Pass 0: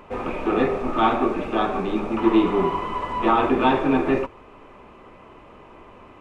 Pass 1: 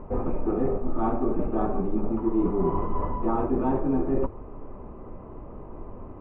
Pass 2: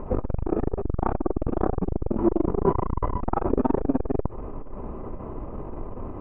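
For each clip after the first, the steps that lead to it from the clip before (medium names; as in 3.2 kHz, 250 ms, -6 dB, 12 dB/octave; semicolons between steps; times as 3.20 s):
low-pass 1.1 kHz 12 dB/octave; tilt EQ -3 dB/octave; reverse; compression 6:1, threshold -21 dBFS, peak gain reduction 13.5 dB; reverse
transformer saturation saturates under 240 Hz; trim +7.5 dB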